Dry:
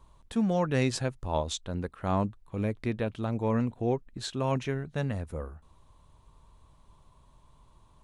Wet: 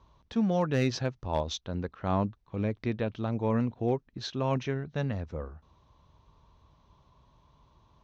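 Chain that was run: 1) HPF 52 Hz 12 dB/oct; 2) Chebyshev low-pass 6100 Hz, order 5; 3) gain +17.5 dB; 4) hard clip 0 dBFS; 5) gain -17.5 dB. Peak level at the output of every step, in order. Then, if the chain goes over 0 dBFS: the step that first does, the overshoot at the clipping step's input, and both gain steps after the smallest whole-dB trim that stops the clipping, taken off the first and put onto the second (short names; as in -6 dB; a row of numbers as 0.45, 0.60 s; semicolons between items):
-13.5, -14.0, +3.5, 0.0, -17.5 dBFS; step 3, 3.5 dB; step 3 +13.5 dB, step 5 -13.5 dB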